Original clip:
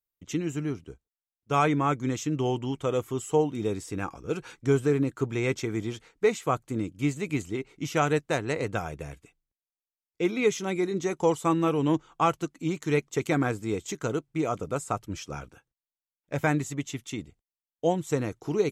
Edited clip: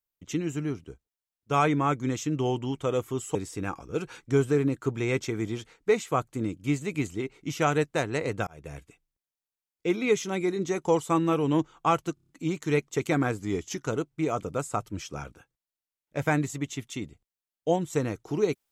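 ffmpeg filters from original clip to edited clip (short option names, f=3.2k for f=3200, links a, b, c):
-filter_complex "[0:a]asplit=10[a][b][c][d][e][f][g][h][i][j];[a]atrim=end=3.352[k];[b]atrim=start=3.698:end=8.82,asetpts=PTS-STARTPTS,afade=t=out:st=5.118:d=0.004:c=hsin[l];[c]atrim=start=8.82:end=12.522,asetpts=PTS-STARTPTS,afade=t=in:d=0.29[m];[d]atrim=start=12.488:end=12.522[n];[e]atrim=start=12.488:end=12.522[o];[f]atrim=start=12.488:end=12.522[p];[g]atrim=start=12.488:end=12.522[q];[h]atrim=start=12.488:end=13.594[r];[i]atrim=start=13.59:end=14.04,asetpts=PTS-STARTPTS,asetrate=41013,aresample=44100[s];[j]atrim=start=14.036[t];[l][m]concat=n=2:v=0:a=1[u];[k][u]acrossfade=d=0.004:c1=hsin:c2=hsin[v];[v][n]acrossfade=d=0.004:c1=hsin:c2=hsin[w];[w][o]acrossfade=d=0.004:c1=hsin:c2=hsin[x];[x][p]acrossfade=d=0.004:c1=hsin:c2=hsin[y];[y][q]acrossfade=d=0.004:c1=hsin:c2=hsin[z];[z][r]acrossfade=d=0.004:c1=hsin:c2=hsin[aa];[aa][s]acrossfade=d=0.004:c1=hsin:c2=hsin[ab];[ab][t]acrossfade=d=0.004:c1=hsin:c2=hsin"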